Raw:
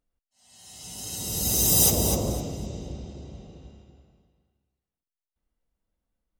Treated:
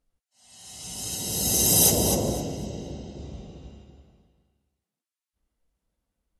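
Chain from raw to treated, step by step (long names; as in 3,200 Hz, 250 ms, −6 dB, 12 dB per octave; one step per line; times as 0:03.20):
0:01.15–0:03.19: notch comb filter 1,200 Hz
on a send at −21.5 dB: convolution reverb RT60 0.40 s, pre-delay 45 ms
on the sum: level +3 dB
Ogg Vorbis 48 kbit/s 32,000 Hz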